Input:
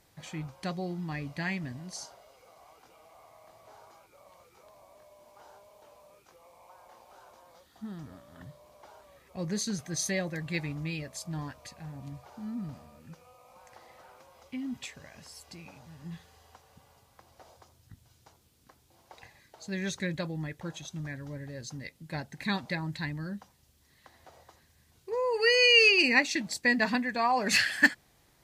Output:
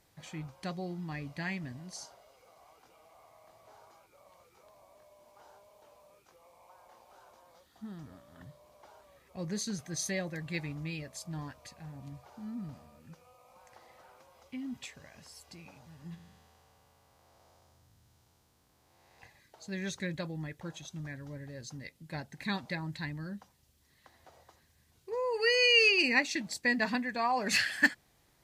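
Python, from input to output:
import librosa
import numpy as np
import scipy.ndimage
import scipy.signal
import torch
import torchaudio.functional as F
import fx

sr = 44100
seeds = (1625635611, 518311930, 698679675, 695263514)

y = fx.spec_blur(x, sr, span_ms=393.0, at=(16.14, 19.19), fade=0.02)
y = y * librosa.db_to_amplitude(-3.5)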